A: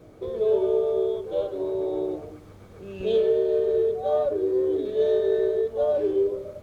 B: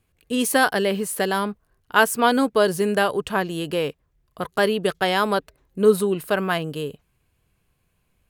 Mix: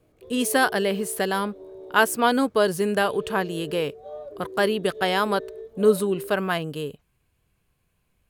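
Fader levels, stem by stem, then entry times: −14.5, −2.0 decibels; 0.00, 0.00 seconds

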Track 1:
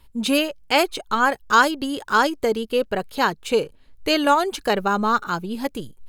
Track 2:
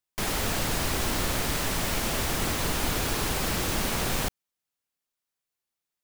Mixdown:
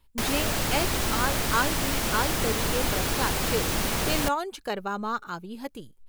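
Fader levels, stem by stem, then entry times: −10.0, +1.0 decibels; 0.00, 0.00 seconds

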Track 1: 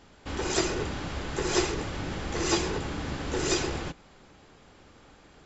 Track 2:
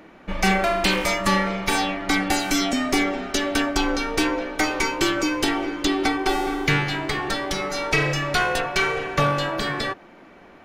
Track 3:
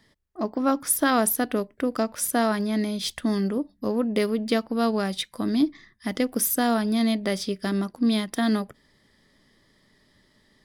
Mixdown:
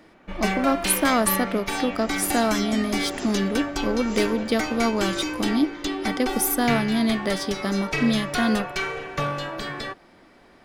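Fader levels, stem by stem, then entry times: −11.0, −6.0, +0.5 decibels; 1.65, 0.00, 0.00 seconds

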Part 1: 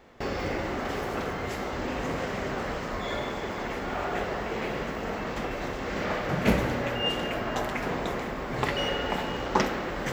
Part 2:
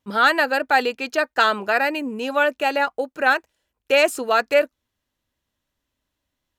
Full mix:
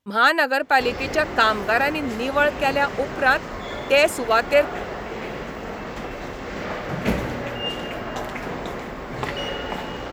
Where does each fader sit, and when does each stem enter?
+0.5, 0.0 decibels; 0.60, 0.00 seconds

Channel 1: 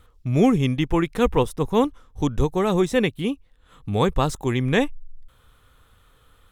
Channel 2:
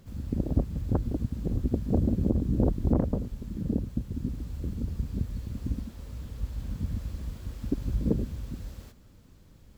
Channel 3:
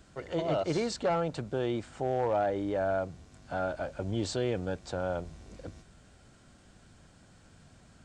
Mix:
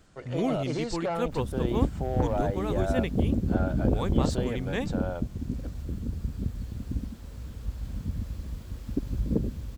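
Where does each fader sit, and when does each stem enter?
−11.5, −0.5, −2.0 decibels; 0.00, 1.25, 0.00 seconds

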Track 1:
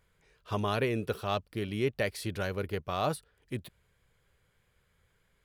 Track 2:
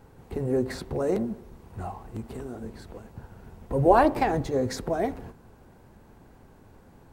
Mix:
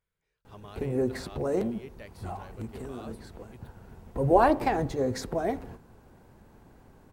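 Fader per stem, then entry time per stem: −16.5, −2.0 decibels; 0.00, 0.45 seconds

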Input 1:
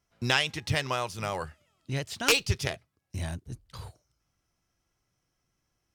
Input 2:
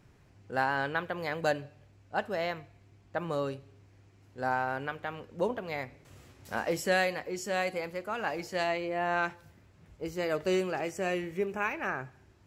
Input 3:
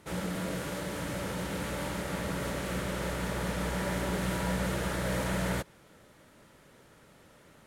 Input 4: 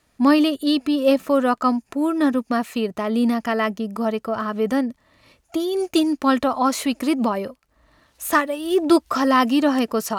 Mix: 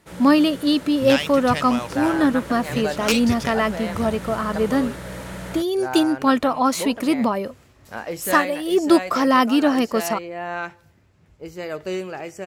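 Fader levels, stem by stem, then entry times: +0.5, +1.0, −2.5, +0.5 decibels; 0.80, 1.40, 0.00, 0.00 seconds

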